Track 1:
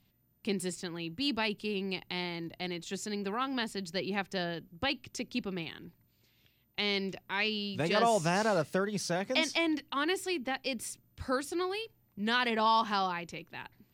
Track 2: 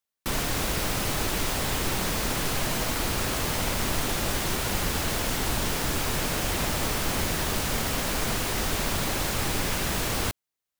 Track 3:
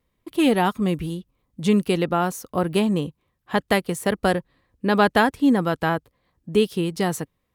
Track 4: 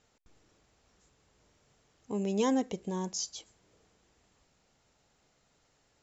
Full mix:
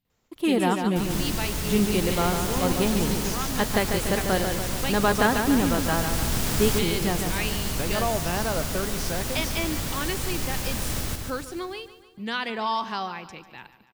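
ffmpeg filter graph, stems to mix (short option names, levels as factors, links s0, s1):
-filter_complex "[0:a]agate=range=0.224:threshold=0.00141:ratio=16:detection=peak,volume=1,asplit=3[s0][s1][s2];[s1]volume=0.178[s3];[1:a]bass=f=250:g=7,treble=f=4000:g=5,adelay=700,volume=0.794,asplit=2[s4][s5];[s5]volume=0.473[s6];[2:a]adelay=50,volume=0.596,asplit=2[s7][s8];[s8]volume=0.501[s9];[3:a]adelay=100,volume=0.668,asplit=2[s10][s11];[s11]volume=0.708[s12];[s2]apad=whole_len=507044[s13];[s4][s13]sidechaincompress=threshold=0.00708:ratio=3:attack=16:release=1240[s14];[s3][s6][s9][s12]amix=inputs=4:normalize=0,aecho=0:1:145|290|435|580|725|870|1015|1160:1|0.53|0.281|0.149|0.0789|0.0418|0.0222|0.0117[s15];[s0][s14][s7][s10][s15]amix=inputs=5:normalize=0"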